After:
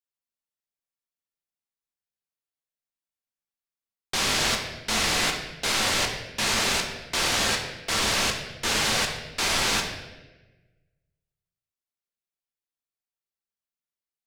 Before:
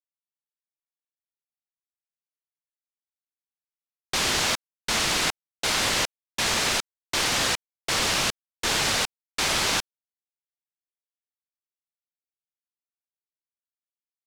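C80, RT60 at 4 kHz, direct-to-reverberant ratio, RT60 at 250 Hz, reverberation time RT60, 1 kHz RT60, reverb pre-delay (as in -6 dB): 7.5 dB, 0.95 s, 1.5 dB, 1.4 s, 1.2 s, 0.95 s, 4 ms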